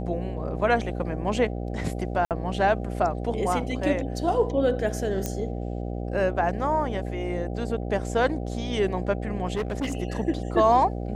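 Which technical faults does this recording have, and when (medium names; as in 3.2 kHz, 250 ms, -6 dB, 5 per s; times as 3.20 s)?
buzz 60 Hz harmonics 13 -31 dBFS
2.25–2.31 s: dropout 58 ms
5.26 s: pop -14 dBFS
9.55–9.97 s: clipped -23.5 dBFS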